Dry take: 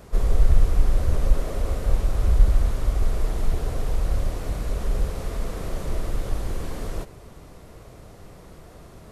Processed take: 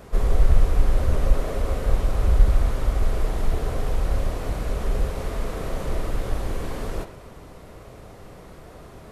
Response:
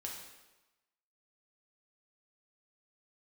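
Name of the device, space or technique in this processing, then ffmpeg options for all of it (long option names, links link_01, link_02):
filtered reverb send: -filter_complex "[0:a]asplit=2[link_01][link_02];[link_02]highpass=frequency=280:poles=1,lowpass=4000[link_03];[1:a]atrim=start_sample=2205[link_04];[link_03][link_04]afir=irnorm=-1:irlink=0,volume=-1.5dB[link_05];[link_01][link_05]amix=inputs=2:normalize=0"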